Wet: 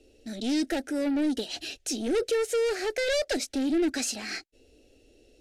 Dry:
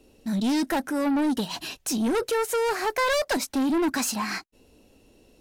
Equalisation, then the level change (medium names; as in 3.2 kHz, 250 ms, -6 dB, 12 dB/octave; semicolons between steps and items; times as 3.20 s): low-pass 8.1 kHz 12 dB/octave; static phaser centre 420 Hz, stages 4; 0.0 dB